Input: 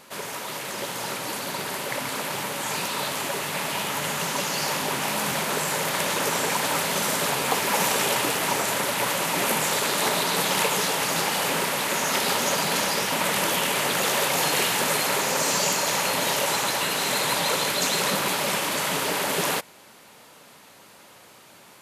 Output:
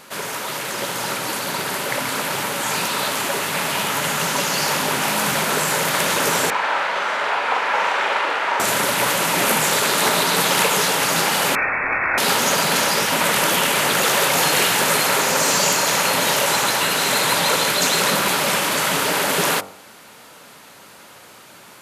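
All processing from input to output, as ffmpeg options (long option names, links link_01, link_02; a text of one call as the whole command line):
ffmpeg -i in.wav -filter_complex "[0:a]asettb=1/sr,asplit=3[link_01][link_02][link_03];[link_01]atrim=end=6.504[link_04];[link_02]atrim=start=6.5:end=8.6,asetpts=PTS-STARTPTS,afade=type=in:duration=0.004:curve=qsin,afade=type=out:start_time=2.096:duration=0.004:curve=qsin,highpass=650,lowpass=2200,asplit=2[link_05][link_06];[link_06]adelay=43,volume=-3dB[link_07];[link_05][link_07]amix=inputs=2:normalize=0,atrim=end_sample=92610[link_08];[link_03]atrim=start=8.596[link_09];[link_04][link_08]acrossfade=duration=0.004:curve1=hsin:curve2=qsin[link_10];[link_10][link_09]acrossfade=duration=0.004:curve1=qsin:curve2=hsin,asettb=1/sr,asplit=3[link_11][link_12][link_13];[link_11]atrim=end=11.554[link_14];[link_12]atrim=start=11.55:end=12.18,asetpts=PTS-STARTPTS,afade=type=in:duration=0.004:curve=qsin,afade=type=out:start_time=0.626:duration=0.004:curve=qsin,highpass=frequency=320:poles=1,asplit=2[link_15][link_16];[link_16]adelay=25,volume=-7dB[link_17];[link_15][link_17]amix=inputs=2:normalize=0,atrim=end_sample=27783,lowpass=frequency=2400:width_type=q:width=0.5098,lowpass=frequency=2400:width_type=q:width=0.6013,lowpass=frequency=2400:width_type=q:width=0.9,lowpass=frequency=2400:width_type=q:width=2.563,afreqshift=-2800[link_18];[link_13]atrim=start=12.176[link_19];[link_14][link_18]acrossfade=duration=0.004:curve1=hsin:curve2=qsin[link_20];[link_20][link_19]acrossfade=duration=0.004:curve1=qsin:curve2=hsin,equalizer=frequency=1400:width_type=o:width=0.4:gain=3.5,bandreject=frequency=48.39:width_type=h:width=4,bandreject=frequency=96.78:width_type=h:width=4,bandreject=frequency=145.17:width_type=h:width=4,bandreject=frequency=193.56:width_type=h:width=4,bandreject=frequency=241.95:width_type=h:width=4,bandreject=frequency=290.34:width_type=h:width=4,bandreject=frequency=338.73:width_type=h:width=4,bandreject=frequency=387.12:width_type=h:width=4,bandreject=frequency=435.51:width_type=h:width=4,bandreject=frequency=483.9:width_type=h:width=4,bandreject=frequency=532.29:width_type=h:width=4,bandreject=frequency=580.68:width_type=h:width=4,bandreject=frequency=629.07:width_type=h:width=4,bandreject=frequency=677.46:width_type=h:width=4,bandreject=frequency=725.85:width_type=h:width=4,bandreject=frequency=774.24:width_type=h:width=4,bandreject=frequency=822.63:width_type=h:width=4,bandreject=frequency=871.02:width_type=h:width=4,bandreject=frequency=919.41:width_type=h:width=4,bandreject=frequency=967.8:width_type=h:width=4,bandreject=frequency=1016.19:width_type=h:width=4,bandreject=frequency=1064.58:width_type=h:width=4,bandreject=frequency=1112.97:width_type=h:width=4,bandreject=frequency=1161.36:width_type=h:width=4,bandreject=frequency=1209.75:width_type=h:width=4,bandreject=frequency=1258.14:width_type=h:width=4,bandreject=frequency=1306.53:width_type=h:width=4,bandreject=frequency=1354.92:width_type=h:width=4,bandreject=frequency=1403.31:width_type=h:width=4,bandreject=frequency=1451.7:width_type=h:width=4,acontrast=46" out.wav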